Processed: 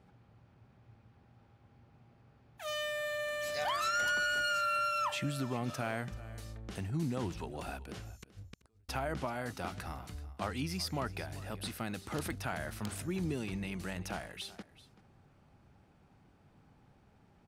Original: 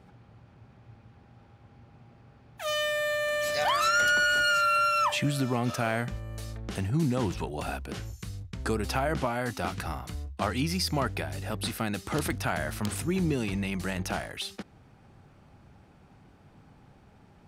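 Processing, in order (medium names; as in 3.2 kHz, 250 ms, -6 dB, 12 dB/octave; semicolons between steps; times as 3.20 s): 8.16–8.89 s: inverted gate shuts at -27 dBFS, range -42 dB; on a send: delay 383 ms -18 dB; on the sum: trim -8 dB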